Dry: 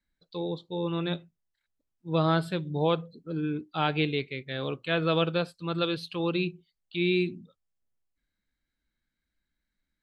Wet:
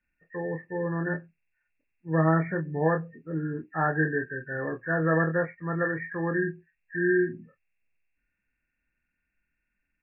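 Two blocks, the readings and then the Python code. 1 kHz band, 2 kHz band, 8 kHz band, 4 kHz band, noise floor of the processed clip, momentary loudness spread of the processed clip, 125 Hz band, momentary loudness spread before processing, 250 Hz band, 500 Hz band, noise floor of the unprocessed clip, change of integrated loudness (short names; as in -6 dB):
+1.0 dB, +6.0 dB, n/a, under -40 dB, -81 dBFS, 11 LU, +2.0 dB, 10 LU, +1.0 dB, +1.0 dB, -84 dBFS, +1.5 dB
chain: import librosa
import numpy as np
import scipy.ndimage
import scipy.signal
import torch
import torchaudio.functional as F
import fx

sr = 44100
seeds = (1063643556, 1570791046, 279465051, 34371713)

y = fx.freq_compress(x, sr, knee_hz=1400.0, ratio=4.0)
y = fx.doubler(y, sr, ms=25.0, db=-6.0)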